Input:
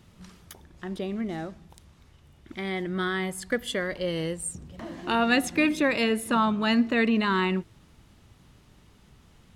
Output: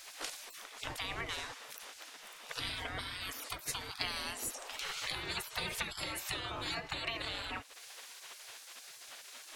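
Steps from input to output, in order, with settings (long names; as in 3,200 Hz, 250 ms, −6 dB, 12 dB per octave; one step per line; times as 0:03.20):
downward compressor 6 to 1, threshold −36 dBFS, peak gain reduction 17 dB
gate on every frequency bin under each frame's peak −25 dB weak
level +17.5 dB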